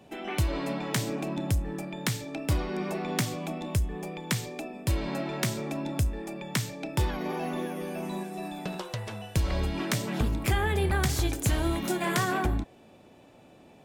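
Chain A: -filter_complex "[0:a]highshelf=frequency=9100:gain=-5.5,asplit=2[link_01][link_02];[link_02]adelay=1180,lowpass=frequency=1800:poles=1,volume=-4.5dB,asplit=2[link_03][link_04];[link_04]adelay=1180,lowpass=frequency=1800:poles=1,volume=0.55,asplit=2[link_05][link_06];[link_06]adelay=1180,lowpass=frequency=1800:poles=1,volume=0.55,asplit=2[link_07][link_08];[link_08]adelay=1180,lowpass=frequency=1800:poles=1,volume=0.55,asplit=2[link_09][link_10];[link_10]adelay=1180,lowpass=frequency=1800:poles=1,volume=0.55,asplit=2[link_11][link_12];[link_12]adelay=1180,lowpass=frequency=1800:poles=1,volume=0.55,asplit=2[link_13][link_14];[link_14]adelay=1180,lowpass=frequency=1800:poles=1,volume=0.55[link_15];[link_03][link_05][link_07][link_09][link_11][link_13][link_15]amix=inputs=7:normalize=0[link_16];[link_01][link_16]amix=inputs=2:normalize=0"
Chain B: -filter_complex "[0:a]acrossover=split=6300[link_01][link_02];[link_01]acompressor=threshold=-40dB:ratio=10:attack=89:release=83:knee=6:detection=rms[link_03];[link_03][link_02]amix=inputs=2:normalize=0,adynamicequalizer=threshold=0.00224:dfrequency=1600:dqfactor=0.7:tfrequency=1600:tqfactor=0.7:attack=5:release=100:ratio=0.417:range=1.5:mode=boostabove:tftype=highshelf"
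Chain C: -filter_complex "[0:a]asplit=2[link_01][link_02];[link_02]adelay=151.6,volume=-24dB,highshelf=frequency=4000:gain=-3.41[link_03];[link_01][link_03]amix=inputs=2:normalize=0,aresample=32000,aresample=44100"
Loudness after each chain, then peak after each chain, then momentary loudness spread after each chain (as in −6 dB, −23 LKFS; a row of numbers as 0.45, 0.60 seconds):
−30.0, −37.0, −30.5 LKFS; −14.0, −14.0, −15.0 dBFS; 7, 7, 9 LU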